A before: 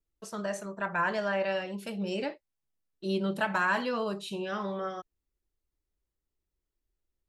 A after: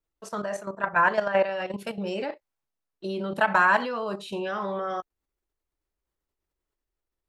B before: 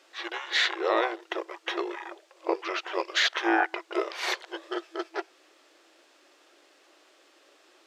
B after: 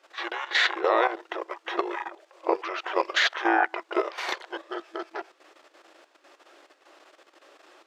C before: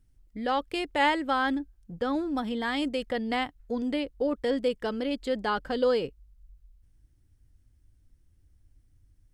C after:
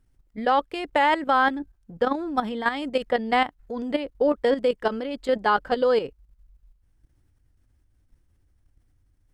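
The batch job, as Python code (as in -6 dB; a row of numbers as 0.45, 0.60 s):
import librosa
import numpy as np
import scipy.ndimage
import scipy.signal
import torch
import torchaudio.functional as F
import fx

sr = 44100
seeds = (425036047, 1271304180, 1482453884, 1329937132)

y = fx.peak_eq(x, sr, hz=930.0, db=8.5, octaves=2.8)
y = fx.level_steps(y, sr, step_db=11)
y = y * 10.0 ** (-9 / 20.0) / np.max(np.abs(y))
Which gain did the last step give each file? +3.0, +1.0, +3.0 dB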